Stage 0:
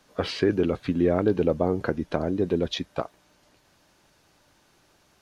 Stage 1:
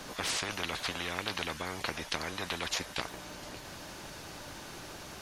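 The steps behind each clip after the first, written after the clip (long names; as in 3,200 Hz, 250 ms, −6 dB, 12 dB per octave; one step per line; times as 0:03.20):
every bin compressed towards the loudest bin 10 to 1
level −5 dB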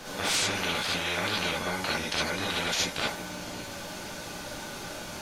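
reverb whose tail is shaped and stops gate 90 ms rising, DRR −5.5 dB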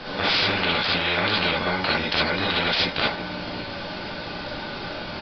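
downsampling to 11,025 Hz
level +7 dB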